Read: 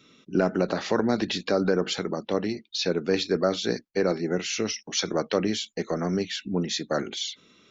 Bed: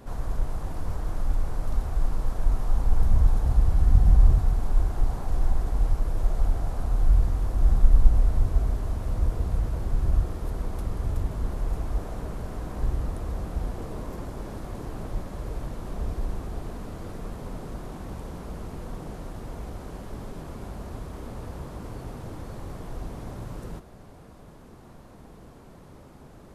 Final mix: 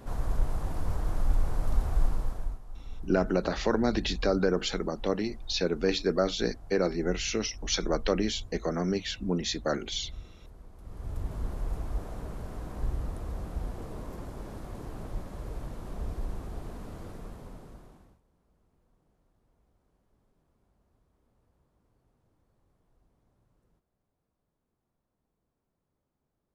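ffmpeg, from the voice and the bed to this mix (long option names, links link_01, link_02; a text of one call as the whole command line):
ffmpeg -i stem1.wav -i stem2.wav -filter_complex "[0:a]adelay=2750,volume=-2.5dB[link_01];[1:a]volume=14.5dB,afade=type=out:start_time=2.01:duration=0.59:silence=0.105925,afade=type=in:start_time=10.79:duration=0.56:silence=0.177828,afade=type=out:start_time=16.99:duration=1.21:silence=0.0354813[link_02];[link_01][link_02]amix=inputs=2:normalize=0" out.wav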